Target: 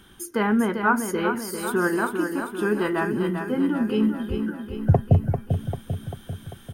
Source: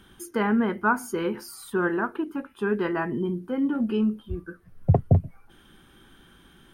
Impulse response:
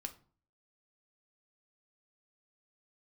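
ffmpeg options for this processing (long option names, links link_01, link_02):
-af "asetnsamples=nb_out_samples=441:pad=0,asendcmd='1.67 highshelf g 11.5',highshelf=frequency=4700:gain=5,aecho=1:1:394|788|1182|1576|1970|2364|2758:0.447|0.259|0.15|0.0872|0.0505|0.0293|0.017,volume=1.5dB"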